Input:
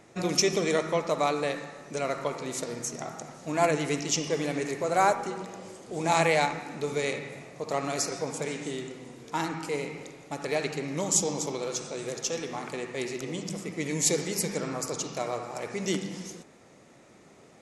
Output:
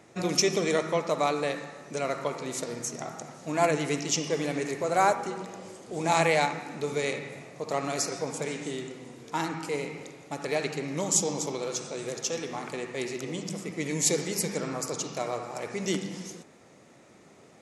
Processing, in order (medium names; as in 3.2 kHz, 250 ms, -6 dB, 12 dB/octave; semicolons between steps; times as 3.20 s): high-pass 61 Hz